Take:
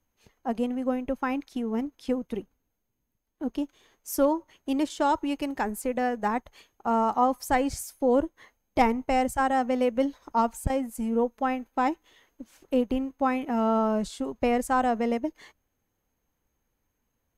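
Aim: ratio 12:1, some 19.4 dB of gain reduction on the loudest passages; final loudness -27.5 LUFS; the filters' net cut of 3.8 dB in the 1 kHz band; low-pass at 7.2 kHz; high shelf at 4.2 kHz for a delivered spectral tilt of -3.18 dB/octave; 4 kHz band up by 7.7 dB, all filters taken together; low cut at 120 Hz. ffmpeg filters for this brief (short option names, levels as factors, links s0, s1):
-af "highpass=120,lowpass=7200,equalizer=f=1000:t=o:g=-6,equalizer=f=4000:t=o:g=7.5,highshelf=f=4200:g=7.5,acompressor=threshold=0.0112:ratio=12,volume=6.68"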